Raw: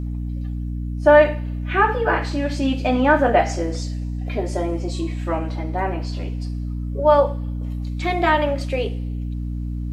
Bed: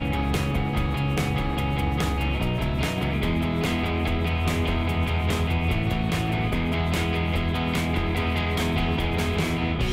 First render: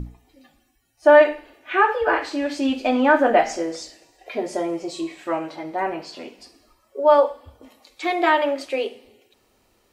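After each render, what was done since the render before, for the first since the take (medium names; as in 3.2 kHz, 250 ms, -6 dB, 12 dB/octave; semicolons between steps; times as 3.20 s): hum notches 60/120/180/240/300 Hz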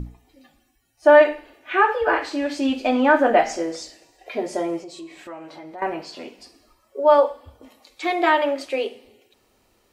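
4.80–5.82 s: compression 2.5:1, threshold -39 dBFS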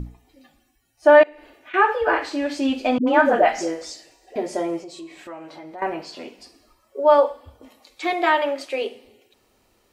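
1.23–1.74 s: compression 5:1, threshold -40 dBFS; 2.98–4.36 s: phase dispersion highs, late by 91 ms, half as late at 430 Hz; 8.13–8.82 s: bass shelf 220 Hz -10 dB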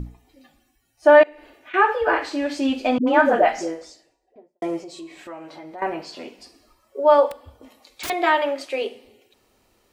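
3.30–4.62 s: studio fade out; 7.30–8.10 s: integer overflow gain 25 dB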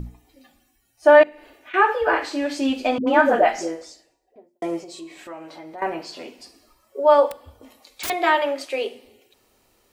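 treble shelf 7.4 kHz +5.5 dB; hum notches 50/100/150/200/250/300/350 Hz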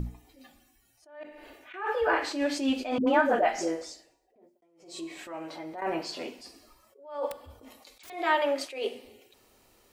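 compression 2:1, threshold -24 dBFS, peak gain reduction 9 dB; attacks held to a fixed rise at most 110 dB/s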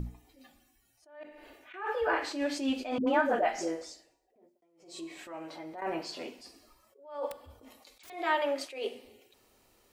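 trim -3.5 dB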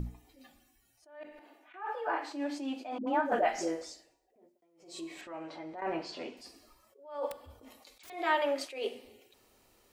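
1.39–3.32 s: rippled Chebyshev high-pass 210 Hz, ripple 9 dB; 5.21–6.37 s: distance through air 83 m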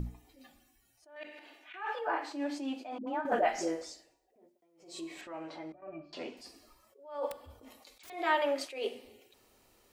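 1.16–1.99 s: frequency weighting D; 2.68–3.25 s: fade out, to -7.5 dB; 5.72–6.13 s: pitch-class resonator D, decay 0.12 s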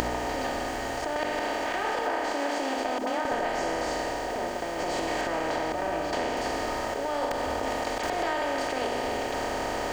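spectral levelling over time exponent 0.2; compression, threshold -25 dBFS, peak gain reduction 7.5 dB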